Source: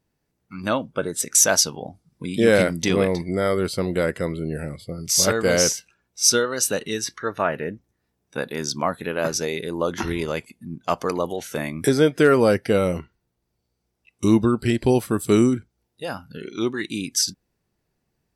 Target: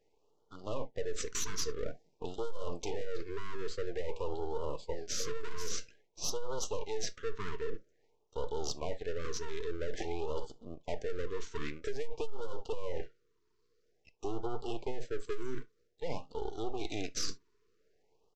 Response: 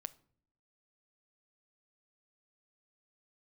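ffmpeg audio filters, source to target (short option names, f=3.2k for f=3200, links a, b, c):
-filter_complex "[0:a]highpass=f=440:t=q:w=4.9,aresample=16000,aeval=exprs='max(val(0),0)':c=same,aresample=44100[a];[1:a]atrim=start_sample=2205,atrim=end_sample=3528[b];[a][b]afir=irnorm=-1:irlink=0,asoftclip=type=tanh:threshold=-15dB,areverse,acompressor=threshold=-35dB:ratio=6,areverse,afftfilt=real='re*(1-between(b*sr/1024,640*pow(2100/640,0.5+0.5*sin(2*PI*0.5*pts/sr))/1.41,640*pow(2100/640,0.5+0.5*sin(2*PI*0.5*pts/sr))*1.41))':imag='im*(1-between(b*sr/1024,640*pow(2100/640,0.5+0.5*sin(2*PI*0.5*pts/sr))/1.41,640*pow(2100/640,0.5+0.5*sin(2*PI*0.5*pts/sr))*1.41))':win_size=1024:overlap=0.75,volume=5.5dB"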